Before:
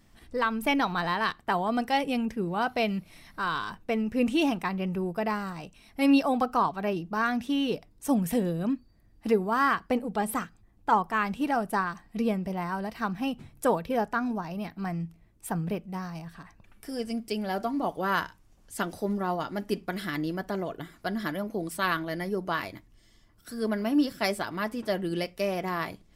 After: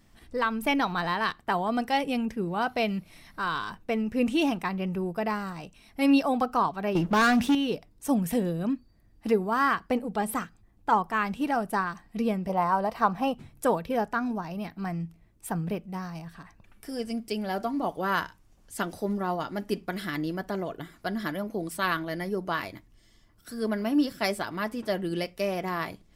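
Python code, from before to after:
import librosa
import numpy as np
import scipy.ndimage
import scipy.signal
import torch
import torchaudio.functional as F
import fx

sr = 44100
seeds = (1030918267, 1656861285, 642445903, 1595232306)

y = fx.leveller(x, sr, passes=3, at=(6.95, 7.55))
y = fx.band_shelf(y, sr, hz=750.0, db=9.5, octaves=1.7, at=(12.49, 13.35))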